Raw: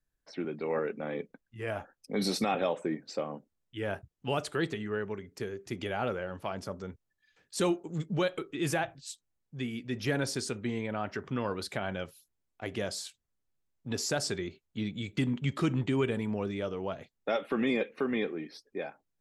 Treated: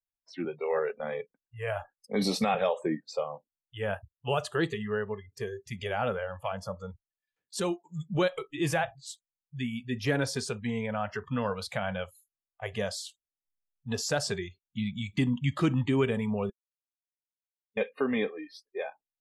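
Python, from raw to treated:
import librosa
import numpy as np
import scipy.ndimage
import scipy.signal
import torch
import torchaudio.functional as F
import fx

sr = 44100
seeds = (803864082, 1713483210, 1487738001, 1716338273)

y = fx.edit(x, sr, fx.clip_gain(start_s=7.6, length_s=0.55, db=-4.5),
    fx.silence(start_s=16.5, length_s=1.27), tone=tone)
y = fx.noise_reduce_blind(y, sr, reduce_db=24)
y = fx.high_shelf(y, sr, hz=5100.0, db=-4.5)
y = y * 10.0 ** (3.0 / 20.0)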